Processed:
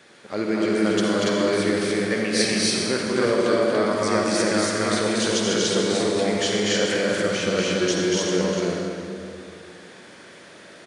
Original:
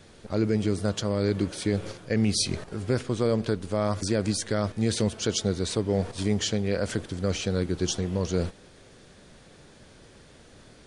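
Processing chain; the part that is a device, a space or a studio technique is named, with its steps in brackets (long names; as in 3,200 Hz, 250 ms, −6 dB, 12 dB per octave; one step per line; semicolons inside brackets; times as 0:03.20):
stadium PA (high-pass filter 240 Hz 12 dB per octave; parametric band 1,800 Hz +7 dB 1.4 octaves; loudspeakers that aren't time-aligned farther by 82 metres −3 dB, 98 metres −1 dB; convolution reverb RT60 2.4 s, pre-delay 46 ms, DRR 0.5 dB)
echo with a time of its own for lows and highs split 370 Hz, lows 160 ms, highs 210 ms, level −14 dB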